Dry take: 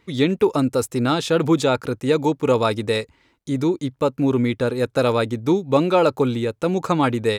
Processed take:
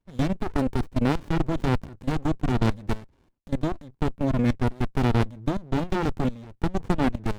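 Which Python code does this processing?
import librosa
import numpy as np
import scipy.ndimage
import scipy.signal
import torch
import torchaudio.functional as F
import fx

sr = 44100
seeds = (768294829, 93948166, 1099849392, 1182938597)

y = fx.level_steps(x, sr, step_db=20)
y = fx.running_max(y, sr, window=65)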